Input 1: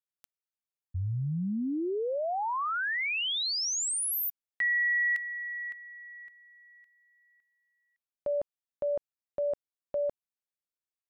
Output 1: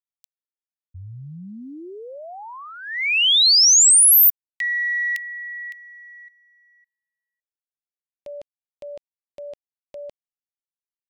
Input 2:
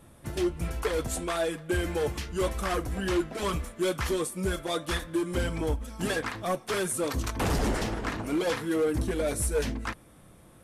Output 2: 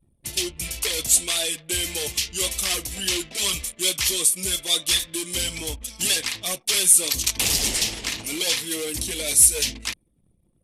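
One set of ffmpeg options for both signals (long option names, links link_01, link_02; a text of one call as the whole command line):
ffmpeg -i in.wav -af "anlmdn=0.01,aexciter=amount=10.6:drive=5.5:freq=2200,volume=-5.5dB" out.wav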